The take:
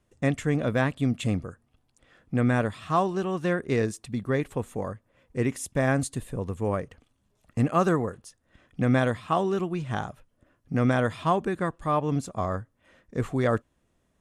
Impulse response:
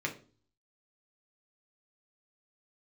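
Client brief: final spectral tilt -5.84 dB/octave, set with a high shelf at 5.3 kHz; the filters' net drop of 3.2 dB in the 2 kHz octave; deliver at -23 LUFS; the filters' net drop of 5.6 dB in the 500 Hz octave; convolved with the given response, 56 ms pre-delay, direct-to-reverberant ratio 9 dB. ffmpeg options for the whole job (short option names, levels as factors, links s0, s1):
-filter_complex "[0:a]equalizer=f=500:t=o:g=-7,equalizer=f=2000:t=o:g=-3,highshelf=f=5300:g=-6.5,asplit=2[s0][s1];[1:a]atrim=start_sample=2205,adelay=56[s2];[s1][s2]afir=irnorm=-1:irlink=0,volume=0.2[s3];[s0][s3]amix=inputs=2:normalize=0,volume=2"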